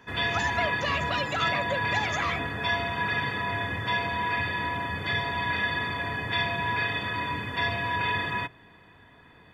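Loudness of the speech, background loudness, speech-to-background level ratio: -31.5 LUFS, -28.0 LUFS, -3.5 dB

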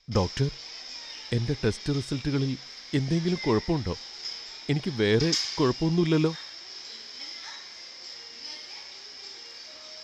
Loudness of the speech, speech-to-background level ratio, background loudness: -27.5 LUFS, 9.0 dB, -36.5 LUFS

